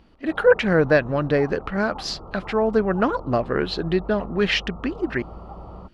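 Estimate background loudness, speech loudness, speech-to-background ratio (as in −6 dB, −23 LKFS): −40.0 LKFS, −22.5 LKFS, 17.5 dB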